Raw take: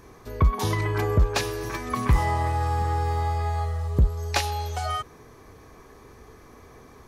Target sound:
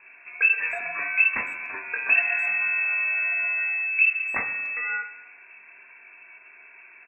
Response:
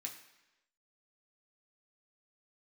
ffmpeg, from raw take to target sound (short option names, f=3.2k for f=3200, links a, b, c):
-filter_complex "[0:a]lowpass=f=2.3k:t=q:w=0.5098,lowpass=f=2.3k:t=q:w=0.6013,lowpass=f=2.3k:t=q:w=0.9,lowpass=f=2.3k:t=q:w=2.563,afreqshift=-2700,asplit=2[a][b];[b]adelay=290,highpass=300,lowpass=3.4k,asoftclip=type=hard:threshold=-17.5dB,volume=-22dB[c];[a][c]amix=inputs=2:normalize=0,asplit=2[d][e];[1:a]atrim=start_sample=2205,lowpass=2.4k,adelay=19[f];[e][f]afir=irnorm=-1:irlink=0,volume=2.5dB[g];[d][g]amix=inputs=2:normalize=0,volume=-3dB"